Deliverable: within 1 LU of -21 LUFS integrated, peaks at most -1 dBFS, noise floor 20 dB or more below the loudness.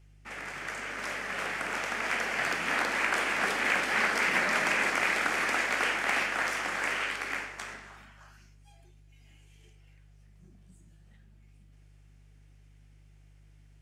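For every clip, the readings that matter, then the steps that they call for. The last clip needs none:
hum 50 Hz; highest harmonic 150 Hz; hum level -54 dBFS; loudness -28.5 LUFS; peak level -13.0 dBFS; loudness target -21.0 LUFS
-> de-hum 50 Hz, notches 3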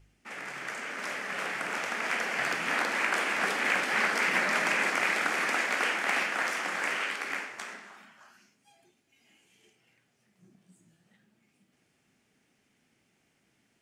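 hum not found; loudness -28.5 LUFS; peak level -13.0 dBFS; loudness target -21.0 LUFS
-> trim +7.5 dB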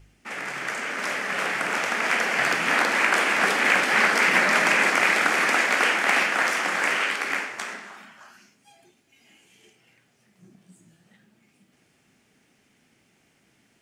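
loudness -21.0 LUFS; peak level -5.5 dBFS; noise floor -65 dBFS

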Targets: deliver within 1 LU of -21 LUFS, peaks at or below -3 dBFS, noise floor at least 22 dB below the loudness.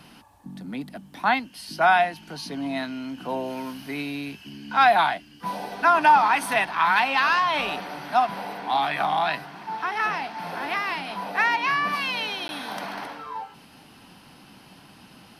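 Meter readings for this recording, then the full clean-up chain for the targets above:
dropouts 1; longest dropout 11 ms; loudness -23.5 LUFS; peak level -7.0 dBFS; loudness target -21.0 LUFS
-> interpolate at 12.48 s, 11 ms; trim +2.5 dB

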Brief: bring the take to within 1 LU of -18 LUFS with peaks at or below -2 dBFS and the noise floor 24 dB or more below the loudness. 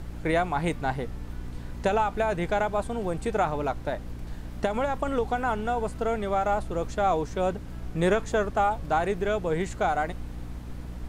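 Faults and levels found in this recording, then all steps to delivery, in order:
hum 60 Hz; highest harmonic 300 Hz; hum level -37 dBFS; noise floor -39 dBFS; noise floor target -52 dBFS; loudness -27.5 LUFS; peak level -12.5 dBFS; loudness target -18.0 LUFS
-> hum notches 60/120/180/240/300 Hz; noise print and reduce 13 dB; trim +9.5 dB

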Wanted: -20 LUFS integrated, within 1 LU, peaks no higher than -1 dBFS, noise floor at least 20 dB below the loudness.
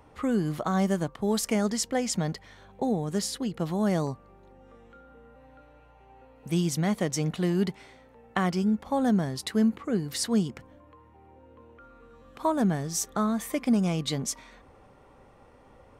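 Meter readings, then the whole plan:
loudness -28.0 LUFS; peak level -11.5 dBFS; loudness target -20.0 LUFS
-> trim +8 dB

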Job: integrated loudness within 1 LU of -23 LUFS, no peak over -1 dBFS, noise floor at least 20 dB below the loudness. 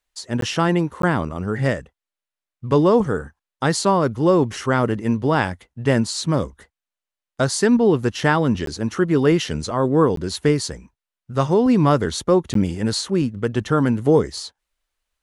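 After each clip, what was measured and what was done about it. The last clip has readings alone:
dropouts 5; longest dropout 13 ms; loudness -20.0 LUFS; peak level -3.0 dBFS; loudness target -23.0 LUFS
-> interpolate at 0.41/1.02/8.66/10.16/12.54 s, 13 ms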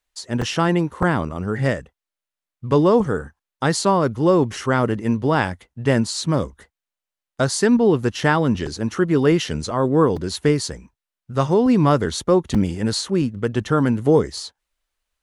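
dropouts 0; loudness -20.0 LUFS; peak level -3.0 dBFS; loudness target -23.0 LUFS
-> trim -3 dB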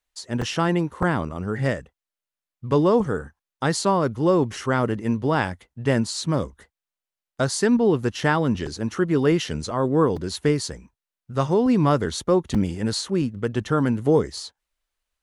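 loudness -23.0 LUFS; peak level -6.0 dBFS; noise floor -90 dBFS

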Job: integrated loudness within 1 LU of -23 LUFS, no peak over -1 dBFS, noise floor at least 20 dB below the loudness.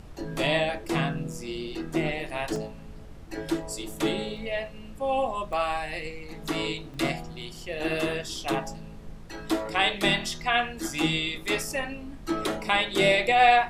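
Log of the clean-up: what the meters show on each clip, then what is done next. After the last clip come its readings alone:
dropouts 6; longest dropout 1.7 ms; noise floor -43 dBFS; noise floor target -48 dBFS; loudness -27.5 LUFS; peak level -6.5 dBFS; loudness target -23.0 LUFS
-> interpolate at 1.33/2.56/4.37/5.53/6.94/7.93 s, 1.7 ms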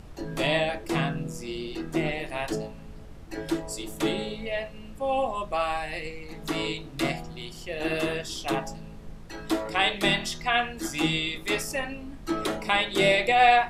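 dropouts 0; noise floor -43 dBFS; noise floor target -48 dBFS
-> noise print and reduce 6 dB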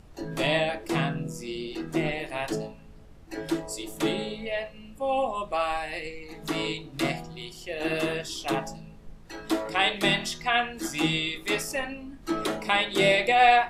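noise floor -48 dBFS; loudness -27.5 LUFS; peak level -6.5 dBFS; loudness target -23.0 LUFS
-> trim +4.5 dB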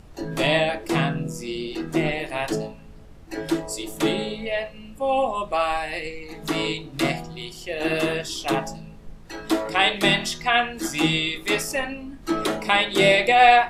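loudness -23.0 LUFS; peak level -2.0 dBFS; noise floor -44 dBFS

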